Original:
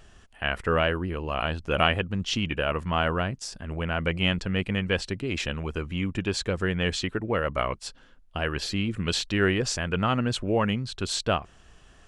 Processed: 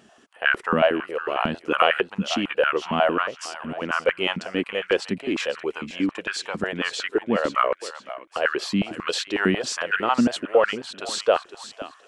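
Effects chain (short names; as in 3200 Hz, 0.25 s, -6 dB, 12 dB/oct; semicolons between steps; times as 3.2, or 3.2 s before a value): thinning echo 0.507 s, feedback 34%, high-pass 790 Hz, level -11 dB; stepped high-pass 11 Hz 220–1500 Hz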